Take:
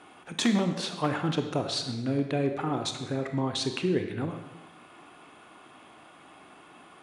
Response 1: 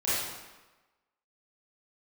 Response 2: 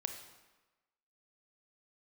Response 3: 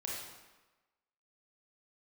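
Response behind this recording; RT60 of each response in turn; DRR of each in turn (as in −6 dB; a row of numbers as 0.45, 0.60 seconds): 2; 1.2, 1.2, 1.2 seconds; −12.0, 5.5, −4.0 decibels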